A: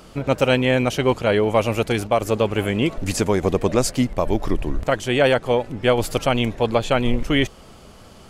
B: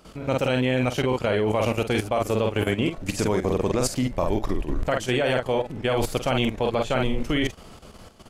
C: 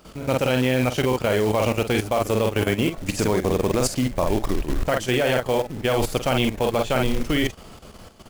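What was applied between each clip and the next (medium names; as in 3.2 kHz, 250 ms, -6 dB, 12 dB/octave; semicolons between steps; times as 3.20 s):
doubling 47 ms -5.5 dB; level held to a coarse grid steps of 11 dB
short-mantissa float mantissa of 2-bit; trim +2 dB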